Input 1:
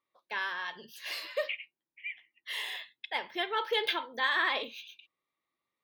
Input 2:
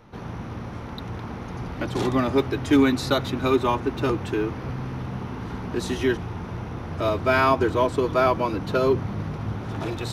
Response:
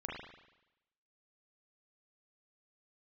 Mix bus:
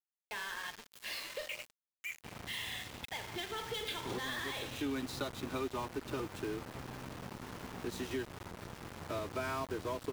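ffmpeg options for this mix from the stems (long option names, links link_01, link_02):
-filter_complex "[0:a]acrossover=split=230|3000[link_01][link_02][link_03];[link_02]acompressor=threshold=-39dB:ratio=2.5[link_04];[link_01][link_04][link_03]amix=inputs=3:normalize=0,asoftclip=type=tanh:threshold=-31.5dB,volume=-3.5dB,asplit=4[link_05][link_06][link_07][link_08];[link_06]volume=-3dB[link_09];[link_07]volume=-15dB[link_10];[1:a]adelay=2100,volume=-10.5dB[link_11];[link_08]apad=whole_len=539215[link_12];[link_11][link_12]sidechaincompress=threshold=-51dB:ratio=8:attack=9.1:release=179[link_13];[2:a]atrim=start_sample=2205[link_14];[link_09][link_14]afir=irnorm=-1:irlink=0[link_15];[link_10]aecho=0:1:207|414|621|828:1|0.3|0.09|0.027[link_16];[link_05][link_13][link_15][link_16]amix=inputs=4:normalize=0,lowshelf=frequency=130:gain=3,acrossover=split=82|220[link_17][link_18][link_19];[link_17]acompressor=threshold=-56dB:ratio=4[link_20];[link_18]acompressor=threshold=-49dB:ratio=4[link_21];[link_19]acompressor=threshold=-36dB:ratio=4[link_22];[link_20][link_21][link_22]amix=inputs=3:normalize=0,aeval=exprs='val(0)*gte(abs(val(0)),0.0075)':channel_layout=same"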